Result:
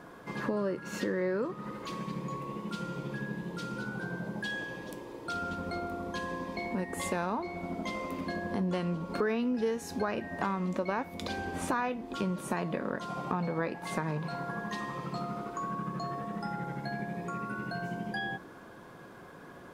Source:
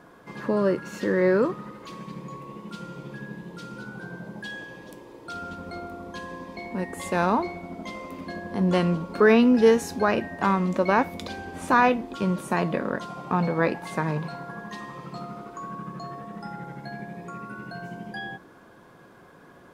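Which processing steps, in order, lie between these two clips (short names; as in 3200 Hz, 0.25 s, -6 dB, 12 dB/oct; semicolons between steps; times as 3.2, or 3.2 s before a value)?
compressor 4:1, threshold -32 dBFS, peak gain reduction 16.5 dB; gain +1.5 dB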